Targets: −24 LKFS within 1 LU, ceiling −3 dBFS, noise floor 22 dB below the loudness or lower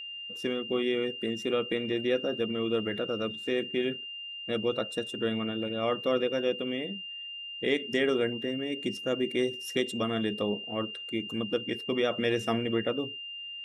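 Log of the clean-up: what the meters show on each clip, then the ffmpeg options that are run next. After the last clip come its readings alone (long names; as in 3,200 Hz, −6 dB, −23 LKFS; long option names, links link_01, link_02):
interfering tone 2,800 Hz; level of the tone −38 dBFS; integrated loudness −31.0 LKFS; sample peak −12.5 dBFS; target loudness −24.0 LKFS
→ -af "bandreject=frequency=2800:width=30"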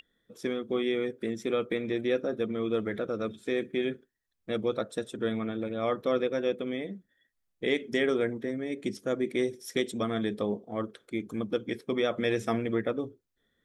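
interfering tone none found; integrated loudness −31.5 LKFS; sample peak −13.0 dBFS; target loudness −24.0 LKFS
→ -af "volume=7.5dB"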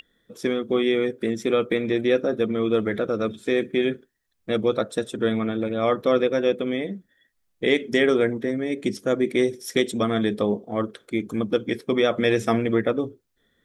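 integrated loudness −24.0 LKFS; sample peak −5.5 dBFS; background noise floor −71 dBFS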